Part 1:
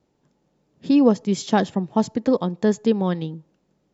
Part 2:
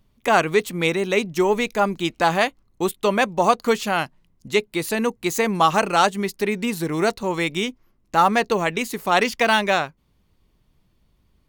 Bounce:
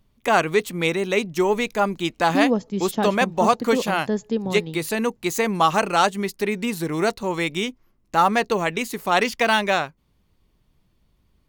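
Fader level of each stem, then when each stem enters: -5.0, -1.0 dB; 1.45, 0.00 s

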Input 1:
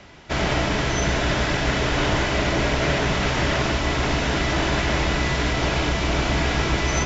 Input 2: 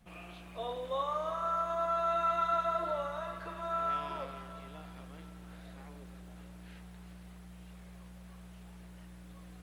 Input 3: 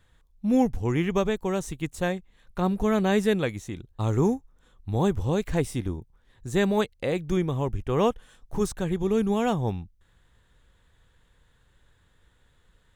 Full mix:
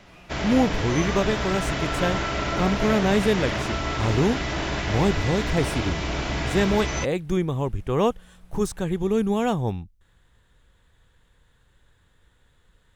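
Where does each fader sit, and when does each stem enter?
-5.5, -3.0, +1.5 dB; 0.00, 0.00, 0.00 s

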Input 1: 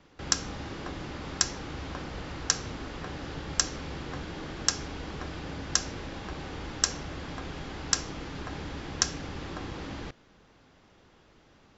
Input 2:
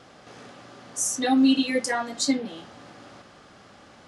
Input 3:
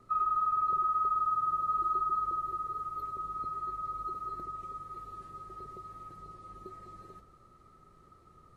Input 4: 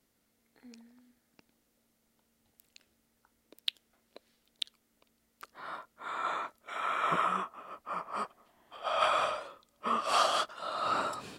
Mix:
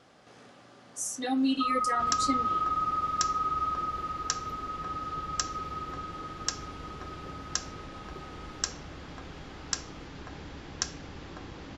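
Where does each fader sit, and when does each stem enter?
-5.5 dB, -8.0 dB, +0.5 dB, off; 1.80 s, 0.00 s, 1.50 s, off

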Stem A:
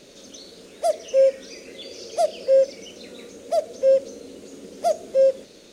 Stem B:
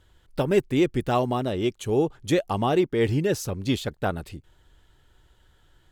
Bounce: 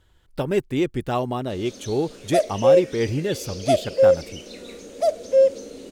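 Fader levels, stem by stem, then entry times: +1.5, -1.0 dB; 1.50, 0.00 s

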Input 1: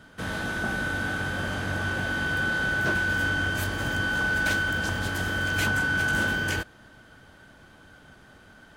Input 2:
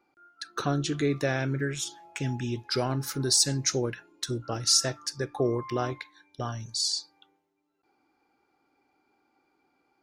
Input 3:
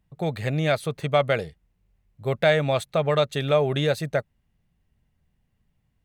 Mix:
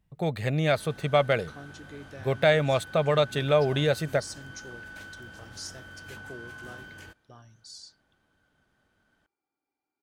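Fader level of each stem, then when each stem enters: -19.0, -18.0, -1.5 dB; 0.50, 0.90, 0.00 s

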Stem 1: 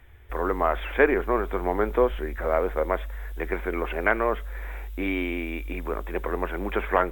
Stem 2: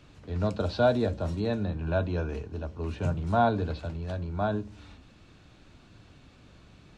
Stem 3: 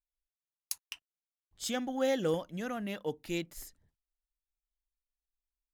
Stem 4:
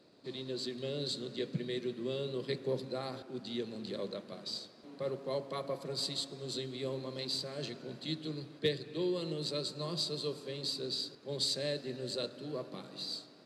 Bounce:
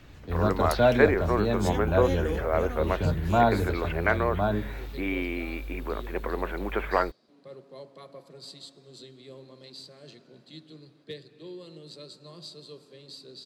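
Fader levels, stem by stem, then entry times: -2.5, +2.0, -2.5, -8.5 dB; 0.00, 0.00, 0.00, 2.45 s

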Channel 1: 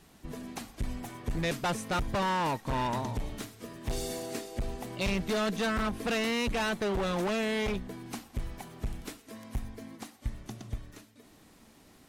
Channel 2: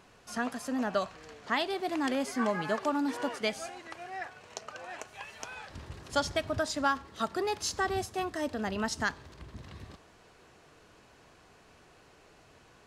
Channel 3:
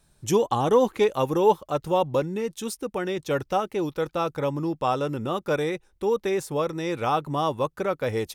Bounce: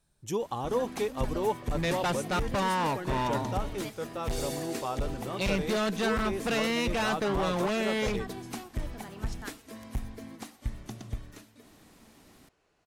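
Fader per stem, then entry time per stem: +1.0, -13.5, -10.0 dB; 0.40, 0.40, 0.00 s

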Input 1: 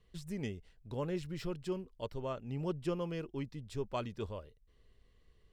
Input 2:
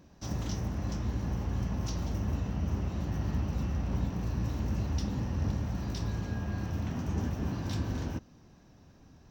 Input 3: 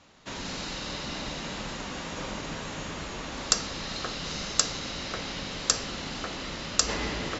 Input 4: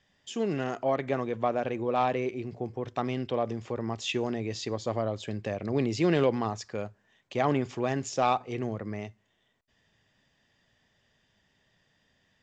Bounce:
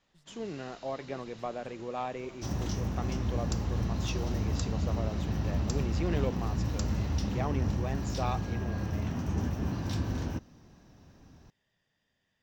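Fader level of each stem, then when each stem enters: -18.5, +1.0, -18.5, -9.0 dB; 0.00, 2.20, 0.00, 0.00 s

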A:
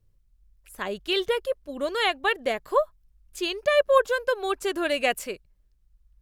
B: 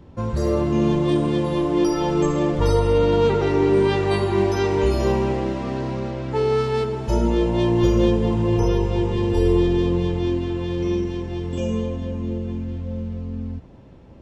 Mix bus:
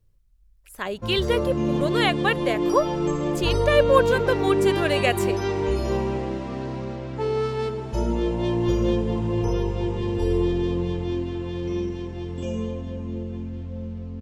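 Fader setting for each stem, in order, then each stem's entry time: +1.5, -4.5 dB; 0.00, 0.85 s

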